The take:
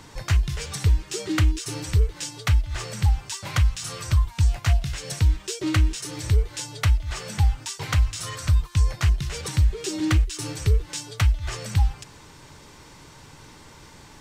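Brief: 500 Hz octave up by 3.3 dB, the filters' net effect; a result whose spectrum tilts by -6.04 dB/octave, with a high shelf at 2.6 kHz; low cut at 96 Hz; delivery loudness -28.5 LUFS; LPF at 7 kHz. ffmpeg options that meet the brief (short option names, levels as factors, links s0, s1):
-af "highpass=96,lowpass=7000,equalizer=f=500:t=o:g=4.5,highshelf=f=2600:g=-7.5,volume=1.06"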